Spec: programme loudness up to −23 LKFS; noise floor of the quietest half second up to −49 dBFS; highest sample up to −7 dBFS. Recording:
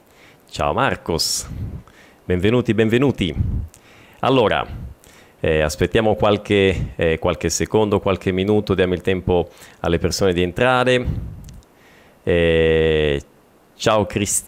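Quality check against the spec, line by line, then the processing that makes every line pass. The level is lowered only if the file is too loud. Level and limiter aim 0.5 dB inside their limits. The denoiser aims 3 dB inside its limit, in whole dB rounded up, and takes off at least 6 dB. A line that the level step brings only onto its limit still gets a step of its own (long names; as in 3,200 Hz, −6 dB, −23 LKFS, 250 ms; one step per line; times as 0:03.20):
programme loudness −18.5 LKFS: out of spec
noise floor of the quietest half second −52 dBFS: in spec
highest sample −5.5 dBFS: out of spec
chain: level −5 dB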